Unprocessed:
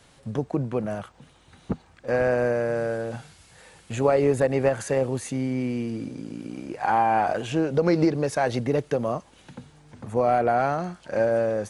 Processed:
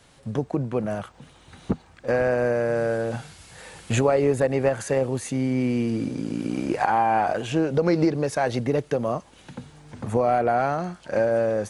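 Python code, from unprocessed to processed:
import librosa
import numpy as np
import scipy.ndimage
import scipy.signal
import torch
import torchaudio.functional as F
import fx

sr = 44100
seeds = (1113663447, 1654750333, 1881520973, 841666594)

y = fx.recorder_agc(x, sr, target_db=-13.0, rise_db_per_s=5.4, max_gain_db=30)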